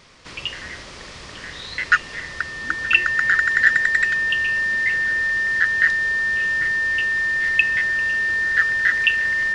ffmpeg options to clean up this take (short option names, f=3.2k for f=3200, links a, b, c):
-af "bandreject=f=1.8k:w=30"